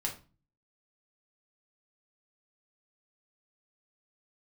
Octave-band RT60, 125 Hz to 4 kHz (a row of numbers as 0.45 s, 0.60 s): 0.65 s, 0.55 s, 0.35 s, 0.35 s, 0.30 s, 0.25 s